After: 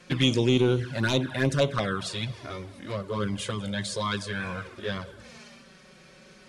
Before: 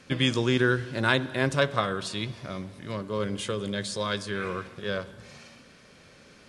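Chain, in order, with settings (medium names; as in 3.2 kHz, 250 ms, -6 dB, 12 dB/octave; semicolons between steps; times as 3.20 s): sine folder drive 6 dB, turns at -6 dBFS; touch-sensitive flanger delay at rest 6 ms, full sweep at -11.5 dBFS; trim -6 dB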